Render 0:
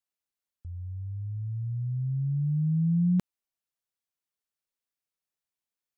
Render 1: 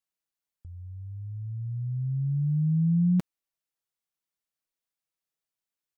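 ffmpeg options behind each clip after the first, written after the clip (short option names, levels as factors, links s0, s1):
-af "aecho=1:1:6.2:0.33,volume=0.891"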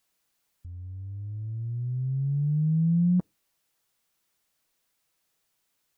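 -af "aeval=exprs='val(0)+0.5*0.00531*sgn(val(0))':c=same,afftdn=nr=22:nf=-41"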